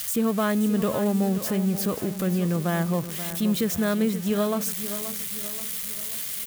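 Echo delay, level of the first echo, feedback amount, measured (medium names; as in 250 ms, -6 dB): 529 ms, -11.5 dB, 47%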